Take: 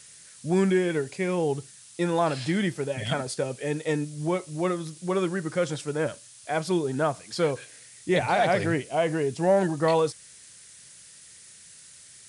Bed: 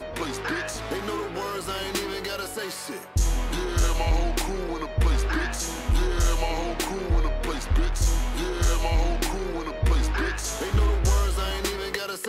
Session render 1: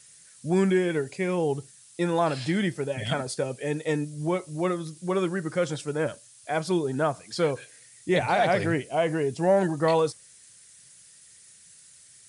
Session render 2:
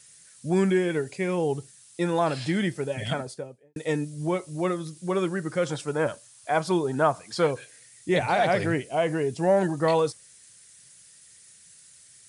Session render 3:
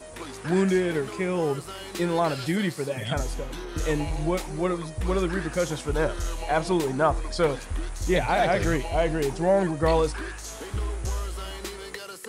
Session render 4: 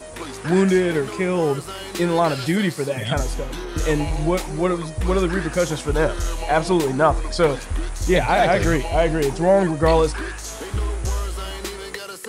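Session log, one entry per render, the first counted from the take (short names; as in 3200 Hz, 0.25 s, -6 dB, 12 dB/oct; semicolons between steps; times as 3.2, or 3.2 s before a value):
denoiser 6 dB, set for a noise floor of -50 dBFS
3–3.76 studio fade out; 5.66–7.47 bell 980 Hz +6.5 dB 1.2 oct
add bed -8 dB
gain +5.5 dB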